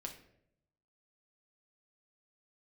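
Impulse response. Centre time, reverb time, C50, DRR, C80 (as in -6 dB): 16 ms, 0.75 s, 9.5 dB, 1.5 dB, 13.0 dB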